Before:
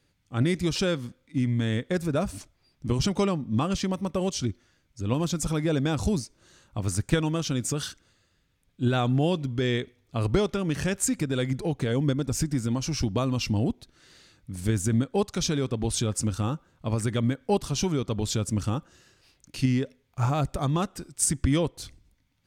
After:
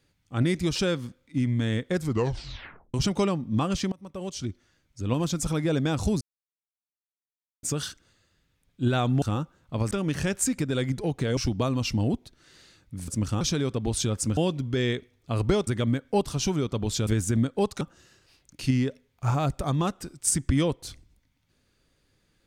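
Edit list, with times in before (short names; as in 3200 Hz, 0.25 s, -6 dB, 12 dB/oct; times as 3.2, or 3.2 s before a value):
1.97 tape stop 0.97 s
3.92–5.2 fade in equal-power, from -23 dB
6.21–7.63 mute
9.22–10.52 swap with 16.34–17.03
11.98–12.93 cut
14.64–15.38 swap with 18.43–18.76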